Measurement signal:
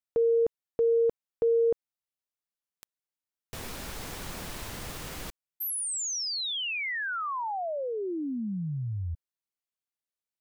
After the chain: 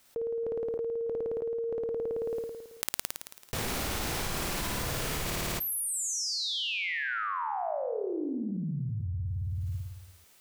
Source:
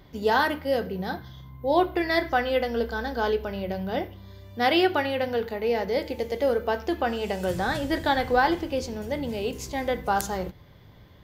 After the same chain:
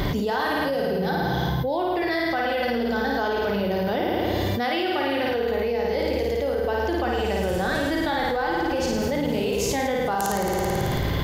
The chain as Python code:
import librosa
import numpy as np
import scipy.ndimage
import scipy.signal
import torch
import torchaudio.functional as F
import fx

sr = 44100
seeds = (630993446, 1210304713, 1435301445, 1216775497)

y = fx.room_flutter(x, sr, wall_m=9.4, rt60_s=1.1)
y = fx.env_flatten(y, sr, amount_pct=100)
y = y * librosa.db_to_amplitude(-9.5)